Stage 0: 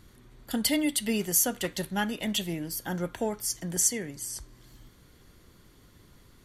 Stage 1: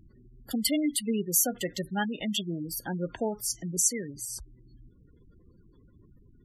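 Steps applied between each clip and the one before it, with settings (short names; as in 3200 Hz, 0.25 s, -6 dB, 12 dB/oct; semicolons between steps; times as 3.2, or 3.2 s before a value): spectral gate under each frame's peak -15 dB strong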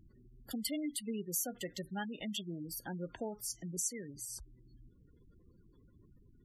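compressor 1.5:1, threshold -38 dBFS, peak gain reduction 6.5 dB; gain -5.5 dB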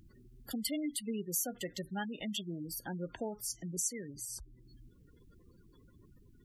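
mismatched tape noise reduction encoder only; gain +1.5 dB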